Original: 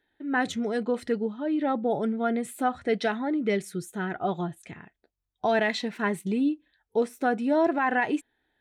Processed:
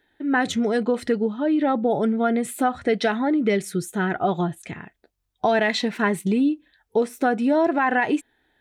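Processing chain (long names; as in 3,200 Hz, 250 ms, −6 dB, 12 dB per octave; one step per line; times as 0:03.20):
downward compressor 2.5 to 1, threshold −26 dBFS, peak gain reduction 5.5 dB
level +8 dB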